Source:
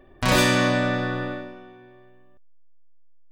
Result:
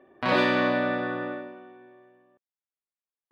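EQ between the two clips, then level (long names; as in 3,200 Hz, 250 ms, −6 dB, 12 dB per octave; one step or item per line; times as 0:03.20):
high-pass filter 260 Hz 12 dB per octave
dynamic equaliser 4,300 Hz, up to +5 dB, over −45 dBFS, Q 3.5
high-frequency loss of the air 380 metres
0.0 dB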